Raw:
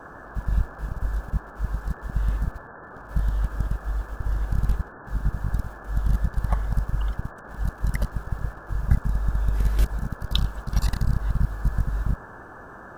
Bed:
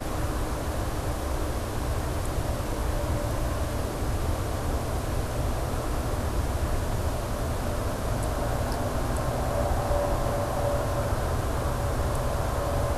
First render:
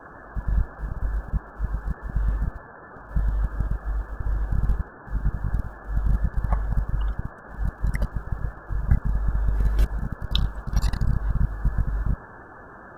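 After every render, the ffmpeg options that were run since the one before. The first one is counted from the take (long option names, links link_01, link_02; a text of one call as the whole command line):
ffmpeg -i in.wav -af "afftdn=noise_reduction=10:noise_floor=-43" out.wav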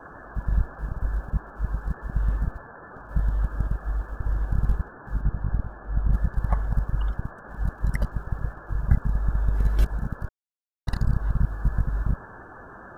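ffmpeg -i in.wav -filter_complex "[0:a]asplit=3[link_01][link_02][link_03];[link_01]afade=type=out:start_time=5.2:duration=0.02[link_04];[link_02]lowpass=frequency=1700:poles=1,afade=type=in:start_time=5.2:duration=0.02,afade=type=out:start_time=6.12:duration=0.02[link_05];[link_03]afade=type=in:start_time=6.12:duration=0.02[link_06];[link_04][link_05][link_06]amix=inputs=3:normalize=0,asplit=3[link_07][link_08][link_09];[link_07]atrim=end=10.29,asetpts=PTS-STARTPTS,afade=type=out:start_time=10.286:duration=0.004:curve=hsin[link_10];[link_08]atrim=start=10.29:end=10.87,asetpts=PTS-STARTPTS,volume=0[link_11];[link_09]atrim=start=10.87,asetpts=PTS-STARTPTS,afade=type=in:duration=0.004:curve=hsin[link_12];[link_10][link_11][link_12]concat=n=3:v=0:a=1" out.wav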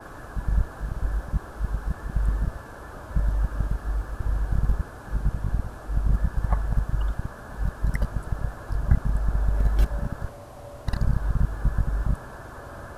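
ffmpeg -i in.wav -i bed.wav -filter_complex "[1:a]volume=-15dB[link_01];[0:a][link_01]amix=inputs=2:normalize=0" out.wav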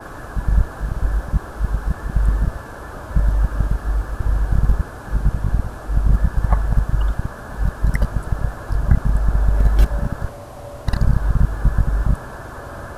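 ffmpeg -i in.wav -af "volume=7dB,alimiter=limit=-2dB:level=0:latency=1" out.wav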